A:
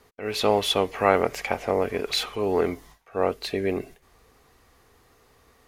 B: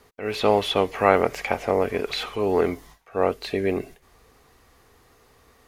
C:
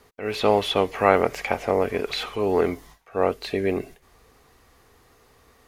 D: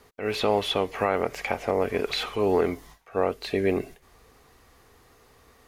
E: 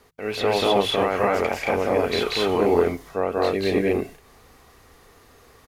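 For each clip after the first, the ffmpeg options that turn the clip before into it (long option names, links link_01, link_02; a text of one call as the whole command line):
ffmpeg -i in.wav -filter_complex "[0:a]acrossover=split=3400[link_01][link_02];[link_02]acompressor=threshold=-38dB:ratio=4:attack=1:release=60[link_03];[link_01][link_03]amix=inputs=2:normalize=0,volume=2dB" out.wav
ffmpeg -i in.wav -af anull out.wav
ffmpeg -i in.wav -af "alimiter=limit=-10.5dB:level=0:latency=1:release=322" out.wav
ffmpeg -i in.wav -filter_complex "[0:a]bandreject=frequency=51.62:width_type=h:width=4,bandreject=frequency=103.24:width_type=h:width=4,bandreject=frequency=154.86:width_type=h:width=4,asplit=2[link_01][link_02];[link_02]aecho=0:1:186.6|221.6:1|1[link_03];[link_01][link_03]amix=inputs=2:normalize=0" out.wav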